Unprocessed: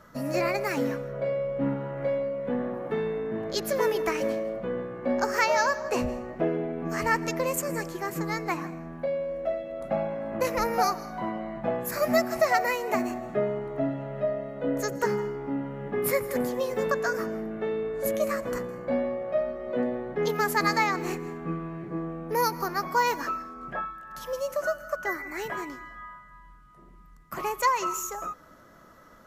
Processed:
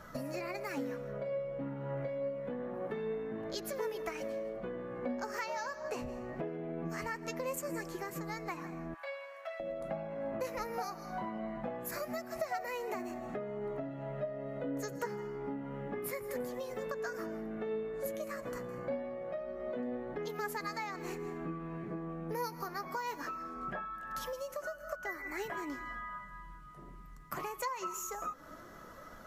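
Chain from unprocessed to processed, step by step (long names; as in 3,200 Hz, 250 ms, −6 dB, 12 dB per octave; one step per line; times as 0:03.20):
0:08.94–0:09.60: high-pass filter 970 Hz 24 dB per octave
downward compressor 5 to 1, threshold −40 dBFS, peak gain reduction 19.5 dB
flanger 0.24 Hz, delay 1.2 ms, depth 6.5 ms, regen +65%
level +6.5 dB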